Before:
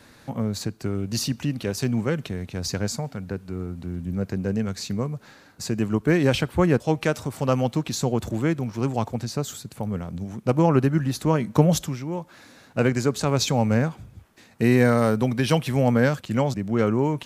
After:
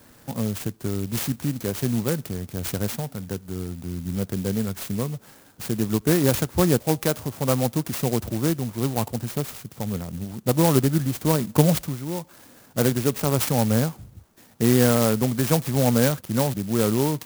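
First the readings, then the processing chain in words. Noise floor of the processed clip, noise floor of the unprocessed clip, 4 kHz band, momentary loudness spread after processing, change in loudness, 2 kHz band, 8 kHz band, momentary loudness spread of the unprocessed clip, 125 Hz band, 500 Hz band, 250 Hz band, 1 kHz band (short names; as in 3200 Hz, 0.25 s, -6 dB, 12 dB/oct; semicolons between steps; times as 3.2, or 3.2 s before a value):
-52 dBFS, -52 dBFS, -0.5 dB, 12 LU, +0.5 dB, -3.0 dB, +4.0 dB, 12 LU, 0.0 dB, -0.5 dB, 0.0 dB, -1.5 dB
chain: clock jitter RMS 0.11 ms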